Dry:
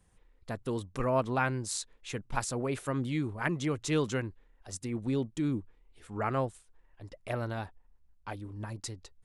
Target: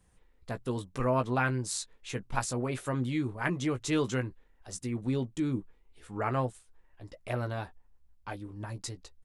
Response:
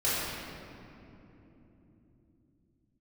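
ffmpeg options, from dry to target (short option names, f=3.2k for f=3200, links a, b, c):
-filter_complex "[0:a]asplit=2[a][b];[b]adelay=16,volume=-8dB[c];[a][c]amix=inputs=2:normalize=0"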